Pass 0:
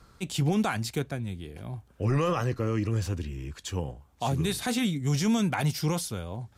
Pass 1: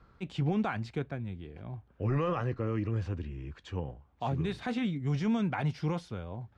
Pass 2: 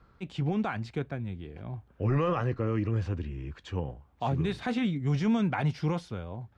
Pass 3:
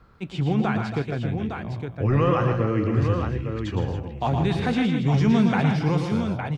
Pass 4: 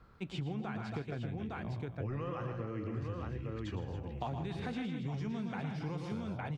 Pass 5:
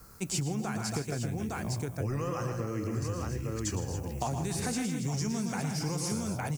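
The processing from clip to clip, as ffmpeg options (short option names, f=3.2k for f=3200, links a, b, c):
-af "lowpass=2.5k,volume=-4dB"
-af "dynaudnorm=f=410:g=5:m=3dB"
-af "aecho=1:1:114|157|276|282|861:0.473|0.316|0.2|0.2|0.473,volume=5.5dB"
-af "acompressor=threshold=-29dB:ratio=10,volume=-6dB"
-af "aexciter=amount=14.6:drive=7.6:freq=5.4k,volume=5.5dB"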